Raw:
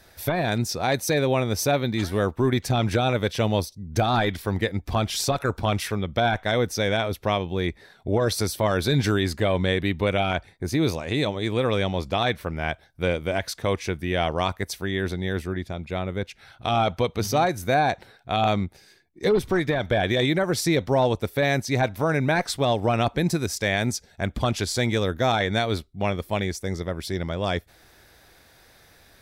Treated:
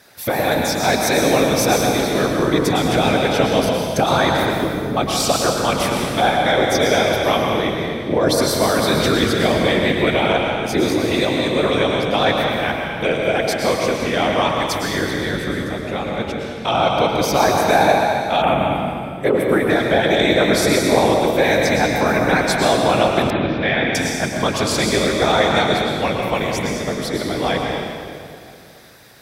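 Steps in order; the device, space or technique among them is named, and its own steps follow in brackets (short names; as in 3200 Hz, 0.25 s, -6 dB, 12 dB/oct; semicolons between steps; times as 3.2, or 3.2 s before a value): 4.57–4.97 steep low-pass 570 Hz; whispering ghost (whisperiser; HPF 260 Hz 6 dB/oct; reverb RT60 2.3 s, pre-delay 0.1 s, DRR 0 dB); 18.42–19.7 band shelf 5100 Hz -15.5 dB 1.1 oct; 23.3–23.95 elliptic low-pass 3400 Hz, stop band 70 dB; gain +5.5 dB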